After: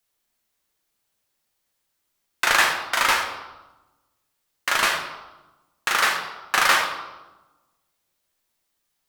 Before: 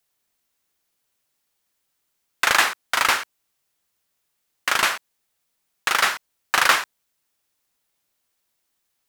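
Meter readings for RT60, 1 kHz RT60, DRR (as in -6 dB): 1.1 s, 1.1 s, 1.5 dB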